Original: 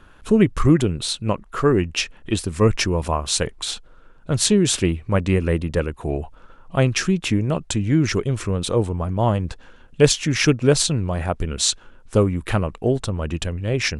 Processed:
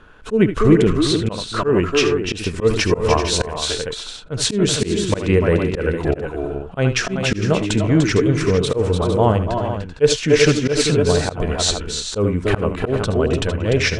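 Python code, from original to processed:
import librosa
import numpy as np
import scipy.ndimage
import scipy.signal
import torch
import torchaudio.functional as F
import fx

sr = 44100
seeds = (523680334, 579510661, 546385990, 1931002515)

p1 = fx.low_shelf(x, sr, hz=180.0, db=-3.5)
p2 = fx.rider(p1, sr, range_db=3, speed_s=0.5)
p3 = p1 + F.gain(torch.from_numpy(p2), -1.0).numpy()
p4 = fx.small_body(p3, sr, hz=(450.0, 1500.0), ring_ms=80, db=9)
p5 = p4 + fx.echo_multitap(p4, sr, ms=(67, 77, 295, 298, 386, 457), db=(-18.5, -13.5, -10.0, -9.5, -11.0, -11.0), dry=0)
p6 = fx.auto_swell(p5, sr, attack_ms=129.0)
p7 = fx.air_absorb(p6, sr, metres=60.0)
y = F.gain(torch.from_numpy(p7), -2.0).numpy()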